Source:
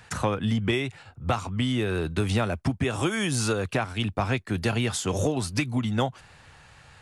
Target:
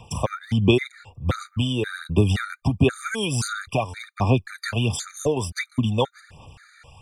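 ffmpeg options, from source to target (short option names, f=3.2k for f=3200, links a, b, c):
-af "aphaser=in_gain=1:out_gain=1:delay=2.2:decay=0.51:speed=1.4:type=sinusoidal,afftfilt=real='re*gt(sin(2*PI*1.9*pts/sr)*(1-2*mod(floor(b*sr/1024/1200),2)),0)':imag='im*gt(sin(2*PI*1.9*pts/sr)*(1-2*mod(floor(b*sr/1024/1200),2)),0)':win_size=1024:overlap=0.75,volume=3dB"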